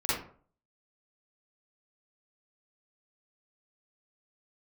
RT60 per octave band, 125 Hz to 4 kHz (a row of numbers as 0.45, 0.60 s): 0.50, 0.50, 0.50, 0.45, 0.35, 0.25 s